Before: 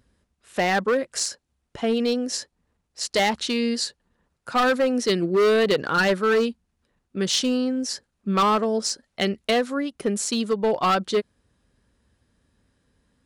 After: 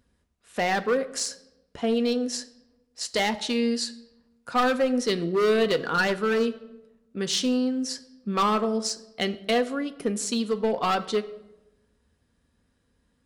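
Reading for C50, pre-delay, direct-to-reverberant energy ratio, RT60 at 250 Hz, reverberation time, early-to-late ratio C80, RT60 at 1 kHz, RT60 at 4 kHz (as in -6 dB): 16.5 dB, 4 ms, 9.0 dB, 1.3 s, 0.95 s, 18.0 dB, 0.80 s, 0.65 s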